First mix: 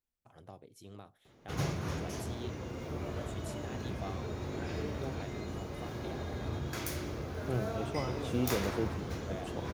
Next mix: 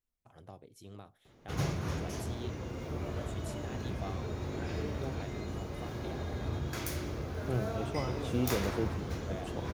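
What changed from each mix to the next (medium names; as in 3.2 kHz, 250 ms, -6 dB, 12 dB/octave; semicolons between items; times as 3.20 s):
master: add bass shelf 64 Hz +6.5 dB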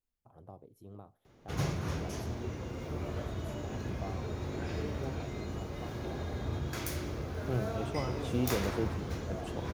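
first voice: add high-order bell 3.9 kHz -16 dB 2.9 oct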